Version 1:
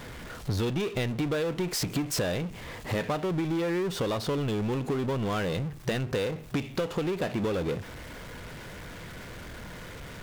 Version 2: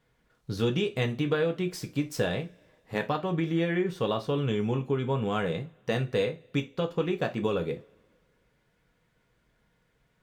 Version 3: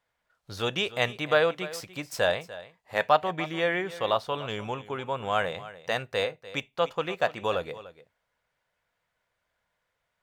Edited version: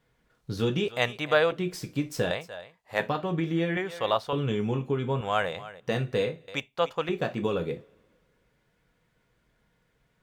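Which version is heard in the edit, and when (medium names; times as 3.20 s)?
2
0.88–1.52 s: from 3
2.31–3.00 s: from 3
3.77–4.33 s: from 3
5.21–5.80 s: from 3
6.48–7.09 s: from 3
not used: 1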